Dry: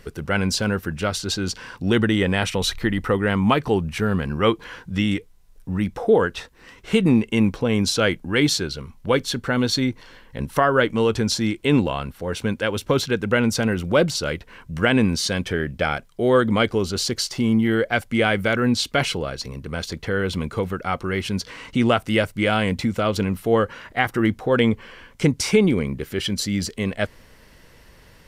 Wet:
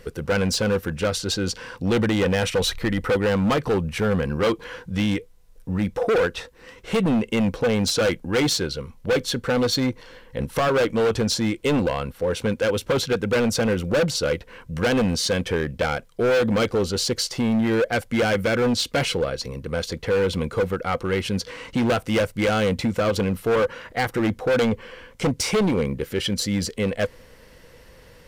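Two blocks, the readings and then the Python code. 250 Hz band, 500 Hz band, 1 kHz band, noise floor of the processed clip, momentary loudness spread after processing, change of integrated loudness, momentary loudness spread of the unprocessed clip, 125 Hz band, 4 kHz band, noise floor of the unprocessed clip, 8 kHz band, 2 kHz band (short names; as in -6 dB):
-2.5 dB, +0.5 dB, -2.5 dB, -49 dBFS, 7 LU, -1.0 dB, 10 LU, -2.0 dB, -1.0 dB, -50 dBFS, 0.0 dB, -2.5 dB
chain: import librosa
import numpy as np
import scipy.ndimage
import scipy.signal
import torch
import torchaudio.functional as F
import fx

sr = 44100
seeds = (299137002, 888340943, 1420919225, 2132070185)

y = fx.peak_eq(x, sr, hz=500.0, db=11.5, octaves=0.2)
y = np.clip(y, -10.0 ** (-17.0 / 20.0), 10.0 ** (-17.0 / 20.0))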